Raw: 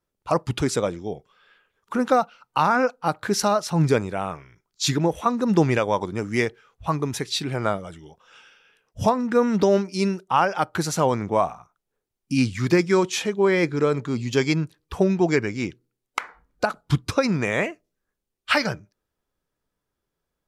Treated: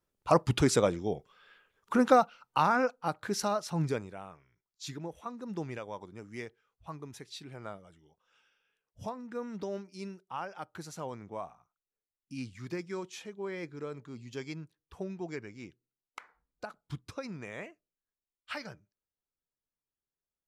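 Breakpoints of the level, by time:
0:01.98 −2 dB
0:03.22 −10 dB
0:03.75 −10 dB
0:04.31 −19 dB

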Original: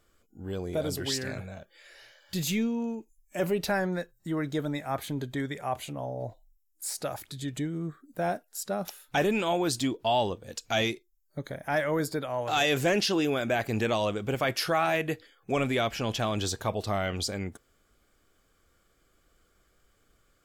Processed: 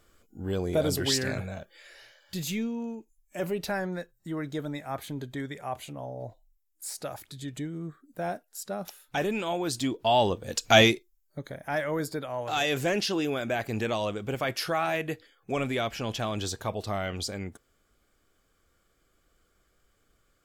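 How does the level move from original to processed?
0:01.58 +4.5 dB
0:02.40 −3 dB
0:09.63 −3 dB
0:10.76 +10 dB
0:11.40 −2 dB

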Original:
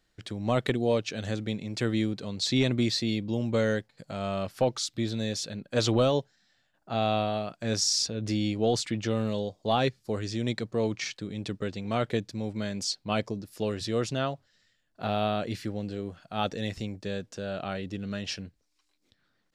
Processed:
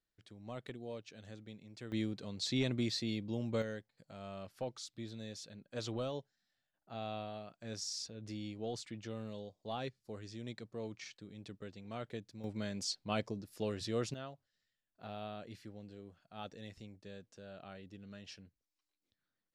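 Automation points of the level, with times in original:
−19.5 dB
from 0:01.92 −9 dB
from 0:03.62 −15.5 dB
from 0:12.44 −7.5 dB
from 0:14.14 −17 dB

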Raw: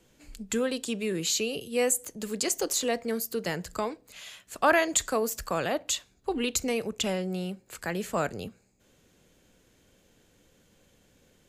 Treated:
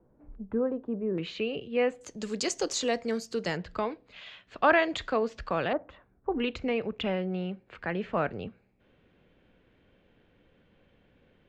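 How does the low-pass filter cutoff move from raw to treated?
low-pass filter 24 dB per octave
1,100 Hz
from 0:01.18 2,800 Hz
from 0:02.01 6,400 Hz
from 0:03.57 3,700 Hz
from 0:05.73 1,500 Hz
from 0:06.40 3,000 Hz

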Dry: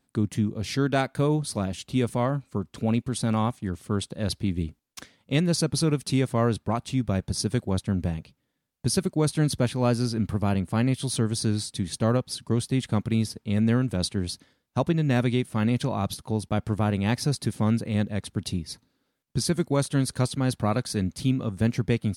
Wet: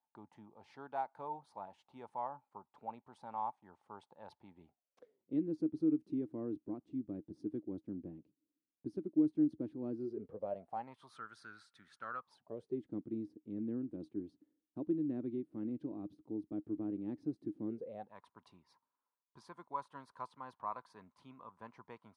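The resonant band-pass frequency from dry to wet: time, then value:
resonant band-pass, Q 11
0:04.63 870 Hz
0:05.34 310 Hz
0:09.96 310 Hz
0:11.25 1,400 Hz
0:12.14 1,400 Hz
0:12.82 310 Hz
0:17.65 310 Hz
0:18.14 1,000 Hz

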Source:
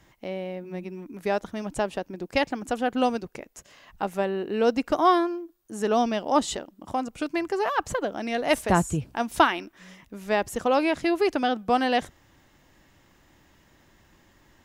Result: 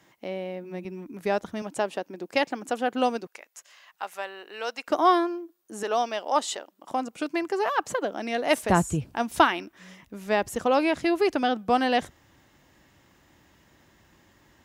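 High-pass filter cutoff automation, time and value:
170 Hz
from 0:00.85 62 Hz
from 0:01.62 250 Hz
from 0:03.27 980 Hz
from 0:04.88 250 Hz
from 0:05.83 530 Hz
from 0:06.91 210 Hz
from 0:08.63 53 Hz

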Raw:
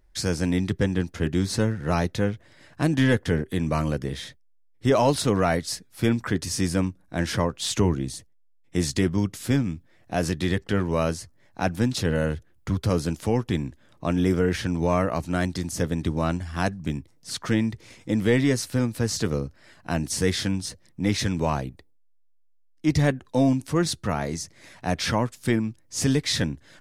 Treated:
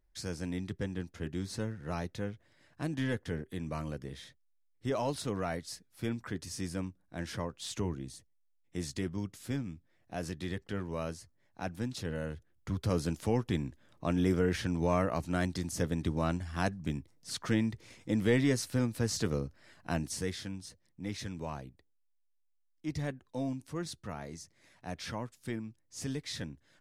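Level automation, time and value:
0:12.31 −13 dB
0:13.02 −6.5 dB
0:19.93 −6.5 dB
0:20.40 −15 dB

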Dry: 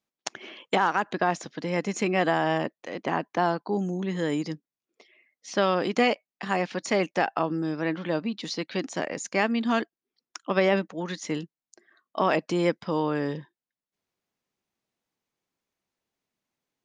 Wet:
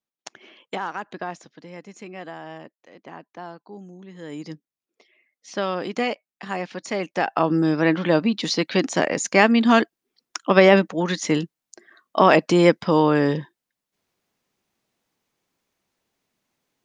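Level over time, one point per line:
0:01.20 −6 dB
0:01.82 −13 dB
0:04.13 −13 dB
0:04.53 −2 dB
0:07.03 −2 dB
0:07.56 +9 dB

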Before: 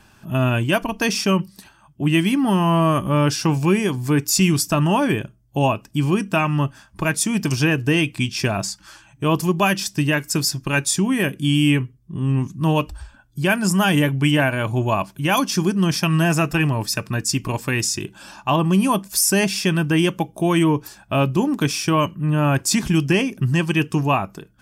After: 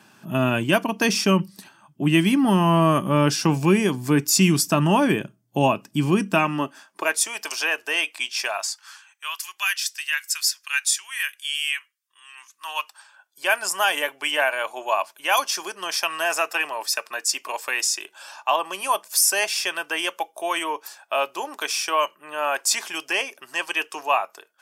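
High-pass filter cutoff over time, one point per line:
high-pass filter 24 dB per octave
0:06.27 150 Hz
0:07.35 590 Hz
0:08.37 590 Hz
0:09.38 1,500 Hz
0:12.30 1,500 Hz
0:13.49 560 Hz

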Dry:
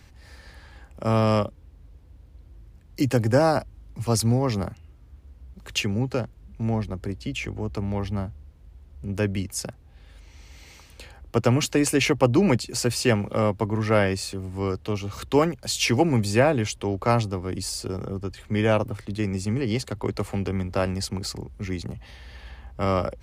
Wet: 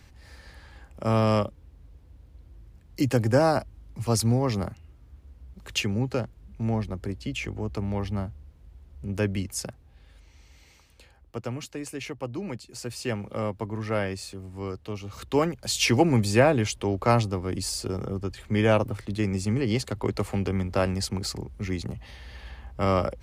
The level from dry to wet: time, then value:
0:09.54 −1.5 dB
0:11.76 −14.5 dB
0:12.53 −14.5 dB
0:13.31 −7 dB
0:14.98 −7 dB
0:15.78 0 dB

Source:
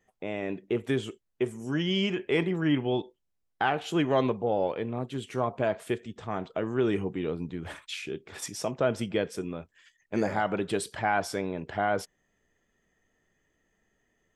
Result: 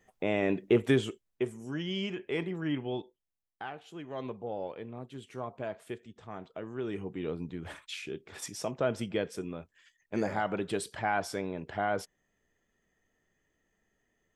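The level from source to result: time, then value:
0:00.79 +4.5 dB
0:01.75 −7 dB
0:02.97 −7 dB
0:04.01 −18 dB
0:04.35 −10 dB
0:06.86 −10 dB
0:07.29 −3.5 dB

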